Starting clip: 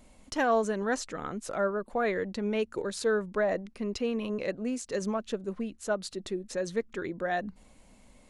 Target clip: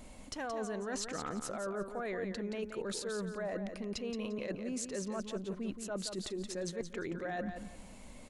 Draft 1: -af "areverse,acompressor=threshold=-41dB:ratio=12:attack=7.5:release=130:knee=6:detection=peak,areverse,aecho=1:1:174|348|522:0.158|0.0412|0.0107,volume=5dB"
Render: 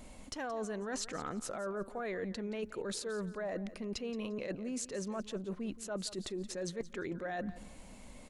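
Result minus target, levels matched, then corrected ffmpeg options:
echo-to-direct -8 dB
-af "areverse,acompressor=threshold=-41dB:ratio=12:attack=7.5:release=130:knee=6:detection=peak,areverse,aecho=1:1:174|348|522:0.398|0.104|0.0269,volume=5dB"

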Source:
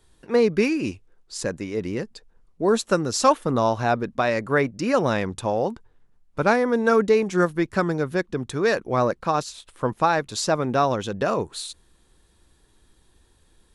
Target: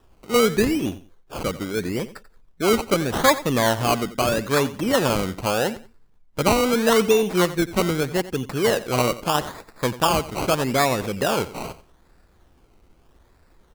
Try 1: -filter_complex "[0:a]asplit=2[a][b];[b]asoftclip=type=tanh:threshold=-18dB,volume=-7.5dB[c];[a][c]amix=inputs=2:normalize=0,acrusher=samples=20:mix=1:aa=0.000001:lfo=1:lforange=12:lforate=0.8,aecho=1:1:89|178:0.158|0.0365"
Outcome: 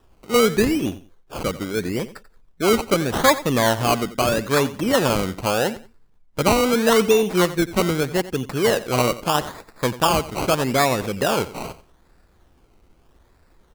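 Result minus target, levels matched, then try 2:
soft clip: distortion -7 dB
-filter_complex "[0:a]asplit=2[a][b];[b]asoftclip=type=tanh:threshold=-30dB,volume=-7.5dB[c];[a][c]amix=inputs=2:normalize=0,acrusher=samples=20:mix=1:aa=0.000001:lfo=1:lforange=12:lforate=0.8,aecho=1:1:89|178:0.158|0.0365"

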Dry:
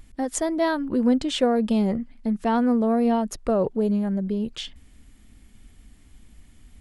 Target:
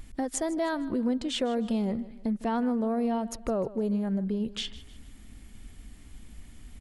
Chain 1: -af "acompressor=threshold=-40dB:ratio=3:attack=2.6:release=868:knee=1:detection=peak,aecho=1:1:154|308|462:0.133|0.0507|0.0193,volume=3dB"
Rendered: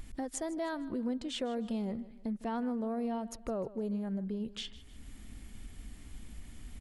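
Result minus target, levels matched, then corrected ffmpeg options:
compressor: peak gain reduction +7 dB
-af "acompressor=threshold=-29.5dB:ratio=3:attack=2.6:release=868:knee=1:detection=peak,aecho=1:1:154|308|462:0.133|0.0507|0.0193,volume=3dB"

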